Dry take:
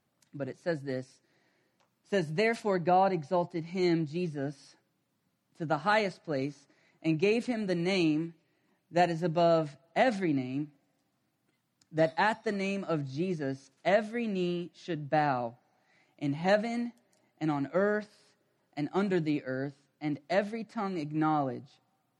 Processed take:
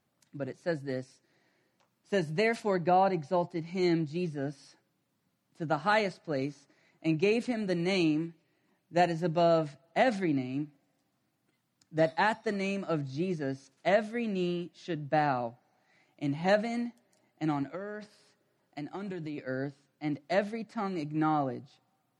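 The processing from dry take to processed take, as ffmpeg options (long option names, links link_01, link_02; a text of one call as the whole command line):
ffmpeg -i in.wav -filter_complex "[0:a]asettb=1/sr,asplit=3[link_01][link_02][link_03];[link_01]atrim=end=17.634[link_04];[link_02]atrim=start=17.63:end=19.38,asetpts=PTS-STARTPTS,afade=type=in:duration=0.004:curve=qsin,afade=type=out:start_time=1.746:duration=0.004:curve=qsin,acompressor=threshold=-34dB:ratio=10:attack=3.2:release=140:knee=1:detection=peak[link_05];[link_03]atrim=start=19.376[link_06];[link_04][link_05]acrossfade=duration=0.004:curve1=hsin:curve2=qsin[link_07];[link_07][link_06]acrossfade=duration=0.004:curve1=qsin:curve2=hsin" out.wav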